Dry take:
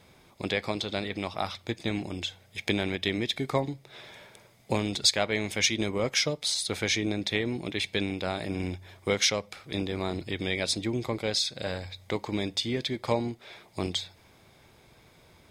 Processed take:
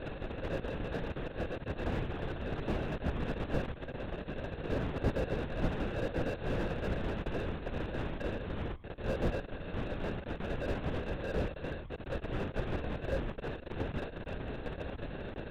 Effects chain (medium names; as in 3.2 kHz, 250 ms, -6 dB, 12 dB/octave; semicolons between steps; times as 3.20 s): zero-crossing glitches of -25 dBFS; dynamic bell 2.8 kHz, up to -7 dB, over -47 dBFS, Q 4.2; sample-and-hold 41×; 1.79–2.63 s: flutter echo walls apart 10.6 m, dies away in 0.99 s; LPC vocoder at 8 kHz whisper; slew-rate limiter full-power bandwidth 33 Hz; trim -5.5 dB